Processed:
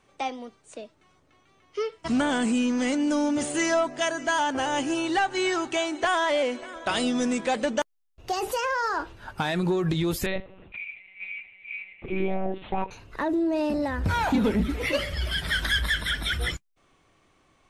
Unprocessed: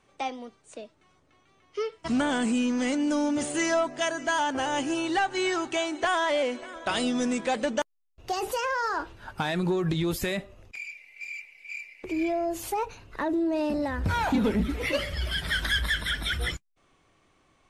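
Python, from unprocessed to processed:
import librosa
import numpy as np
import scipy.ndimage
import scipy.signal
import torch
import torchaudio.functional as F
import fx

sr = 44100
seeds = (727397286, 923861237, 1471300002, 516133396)

y = fx.lpc_monotone(x, sr, seeds[0], pitch_hz=190.0, order=10, at=(10.26, 12.91))
y = y * 10.0 ** (1.5 / 20.0)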